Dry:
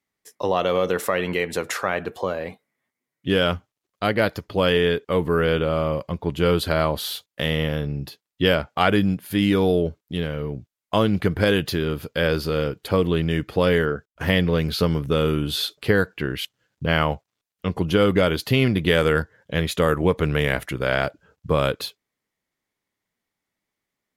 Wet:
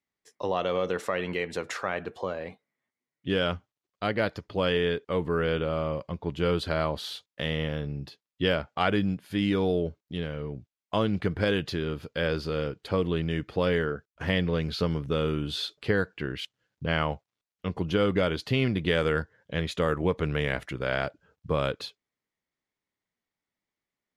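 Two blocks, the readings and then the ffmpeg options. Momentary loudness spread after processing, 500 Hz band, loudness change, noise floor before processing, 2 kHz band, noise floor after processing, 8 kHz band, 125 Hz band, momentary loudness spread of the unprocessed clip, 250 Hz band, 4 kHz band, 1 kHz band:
10 LU, -6.5 dB, -6.5 dB, -85 dBFS, -6.5 dB, under -85 dBFS, under -10 dB, -6.5 dB, 10 LU, -6.5 dB, -6.5 dB, -6.5 dB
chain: -af "lowpass=6800,volume=0.473"

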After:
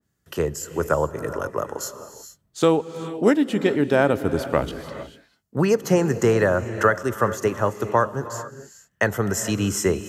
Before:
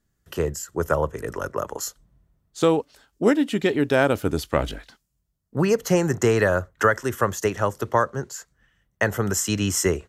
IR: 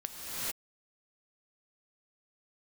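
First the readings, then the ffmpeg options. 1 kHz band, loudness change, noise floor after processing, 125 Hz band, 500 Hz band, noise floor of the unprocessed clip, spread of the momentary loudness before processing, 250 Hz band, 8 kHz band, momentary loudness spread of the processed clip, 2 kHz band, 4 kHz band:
+1.0 dB, +1.0 dB, -71 dBFS, +0.5 dB, +1.5 dB, -74 dBFS, 12 LU, +1.5 dB, -2.0 dB, 15 LU, 0.0 dB, -1.5 dB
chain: -filter_complex "[0:a]highpass=84,asplit=2[s0][s1];[1:a]atrim=start_sample=2205[s2];[s1][s2]afir=irnorm=-1:irlink=0,volume=0.188[s3];[s0][s3]amix=inputs=2:normalize=0,adynamicequalizer=threshold=0.0178:dfrequency=1700:dqfactor=0.7:tfrequency=1700:tqfactor=0.7:attack=5:release=100:ratio=0.375:range=3.5:mode=cutabove:tftype=highshelf"

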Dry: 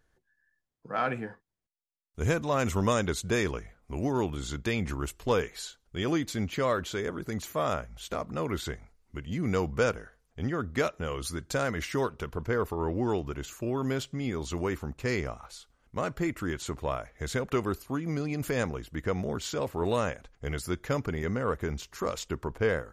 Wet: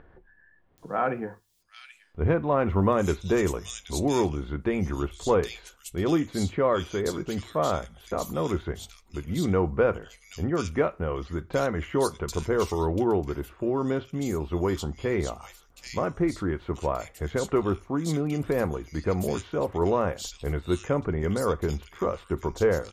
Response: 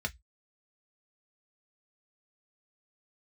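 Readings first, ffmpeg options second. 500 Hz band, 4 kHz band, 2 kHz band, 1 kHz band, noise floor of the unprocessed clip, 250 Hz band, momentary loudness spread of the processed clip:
+5.0 dB, -0.5 dB, -1.5 dB, +3.5 dB, -75 dBFS, +4.5 dB, 9 LU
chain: -filter_complex "[0:a]acompressor=mode=upward:threshold=0.00708:ratio=2.5,acrossover=split=2600[s0][s1];[s1]adelay=780[s2];[s0][s2]amix=inputs=2:normalize=0,asplit=2[s3][s4];[1:a]atrim=start_sample=2205,asetrate=24255,aresample=44100[s5];[s4][s5]afir=irnorm=-1:irlink=0,volume=0.178[s6];[s3][s6]amix=inputs=2:normalize=0,volume=1.33"

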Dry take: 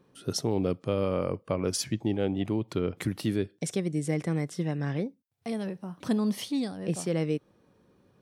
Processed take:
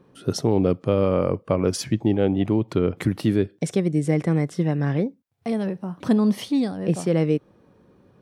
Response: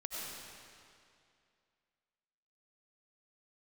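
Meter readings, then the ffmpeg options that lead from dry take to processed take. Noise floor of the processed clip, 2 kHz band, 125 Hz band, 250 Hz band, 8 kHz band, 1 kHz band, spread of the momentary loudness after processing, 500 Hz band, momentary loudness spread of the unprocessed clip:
-58 dBFS, +5.0 dB, +8.0 dB, +8.0 dB, +0.5 dB, +7.0 dB, 6 LU, +7.5 dB, 6 LU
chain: -af "highshelf=f=2700:g=-8.5,volume=2.51"

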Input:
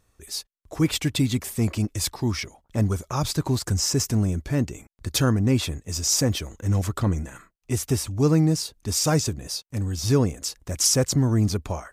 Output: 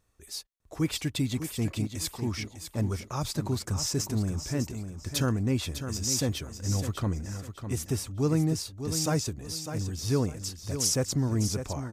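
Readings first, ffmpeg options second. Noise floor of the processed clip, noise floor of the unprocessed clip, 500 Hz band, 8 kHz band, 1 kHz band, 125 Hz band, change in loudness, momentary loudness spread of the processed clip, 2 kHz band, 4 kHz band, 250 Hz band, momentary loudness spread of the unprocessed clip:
-55 dBFS, -68 dBFS, -6.0 dB, -6.0 dB, -6.0 dB, -6.0 dB, -6.0 dB, 8 LU, -6.0 dB, -6.0 dB, -6.0 dB, 10 LU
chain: -af "aecho=1:1:602|1204|1806:0.355|0.0993|0.0278,volume=0.473"

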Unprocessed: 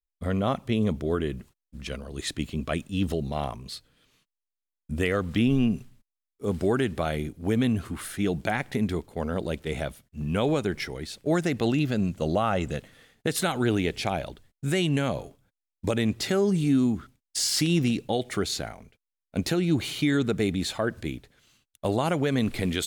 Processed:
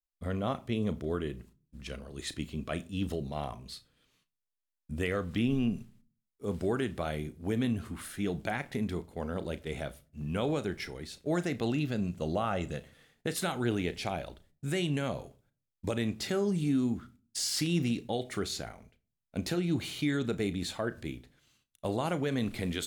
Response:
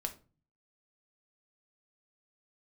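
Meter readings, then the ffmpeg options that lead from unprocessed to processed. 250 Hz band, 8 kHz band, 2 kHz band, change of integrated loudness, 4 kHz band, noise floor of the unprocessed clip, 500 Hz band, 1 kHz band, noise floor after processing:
-6.5 dB, -6.5 dB, -6.5 dB, -6.5 dB, -6.5 dB, under -85 dBFS, -6.5 dB, -6.5 dB, under -85 dBFS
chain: -filter_complex "[0:a]asplit=2[s0][s1];[1:a]atrim=start_sample=2205,adelay=34[s2];[s1][s2]afir=irnorm=-1:irlink=0,volume=0.224[s3];[s0][s3]amix=inputs=2:normalize=0,volume=0.473"

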